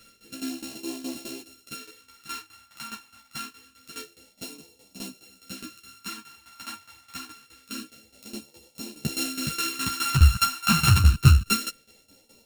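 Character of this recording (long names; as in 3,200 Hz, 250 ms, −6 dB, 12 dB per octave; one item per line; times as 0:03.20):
a buzz of ramps at a fixed pitch in blocks of 32 samples
phaser sweep stages 2, 0.26 Hz, lowest notch 440–1,300 Hz
tremolo saw down 4.8 Hz, depth 85%
a shimmering, thickened sound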